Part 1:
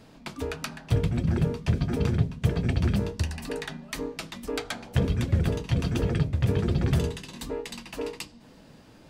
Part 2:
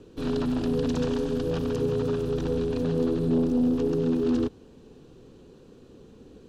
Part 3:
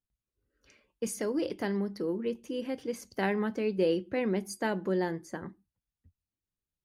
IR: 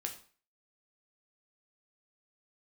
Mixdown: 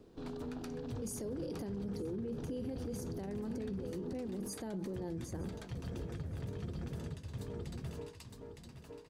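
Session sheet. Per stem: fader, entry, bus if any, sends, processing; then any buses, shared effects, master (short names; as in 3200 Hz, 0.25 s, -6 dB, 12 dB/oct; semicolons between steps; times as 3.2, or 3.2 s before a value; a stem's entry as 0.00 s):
-16.0 dB, 0.00 s, no send, echo send -3 dB, dry
-10.0 dB, 0.00 s, no send, no echo send, LPF 5700 Hz; bell 780 Hz +5.5 dB 0.41 oct; compressor 3:1, threshold -32 dBFS, peak gain reduction 9.5 dB
-0.5 dB, 0.00 s, no send, echo send -22.5 dB, bell 1600 Hz -12.5 dB 2.2 oct; harmonic-percussive split harmonic +5 dB; negative-ratio compressor -30 dBFS, ratio -0.5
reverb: off
echo: feedback echo 0.913 s, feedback 27%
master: bell 2600 Hz -5 dB 1 oct; limiter -33 dBFS, peak gain reduction 15 dB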